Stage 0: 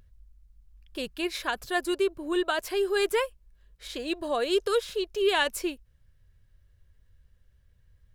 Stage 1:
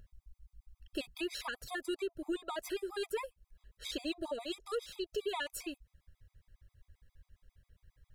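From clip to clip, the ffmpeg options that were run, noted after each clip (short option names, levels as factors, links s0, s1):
-af "acompressor=threshold=0.02:ratio=6,afftfilt=real='re*gt(sin(2*PI*7.4*pts/sr)*(1-2*mod(floor(b*sr/1024/650),2)),0)':imag='im*gt(sin(2*PI*7.4*pts/sr)*(1-2*mod(floor(b*sr/1024/650),2)),0)':win_size=1024:overlap=0.75,volume=1.19"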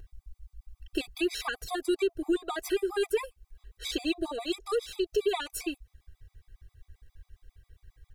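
-af "aecho=1:1:2.6:0.76,volume=1.78"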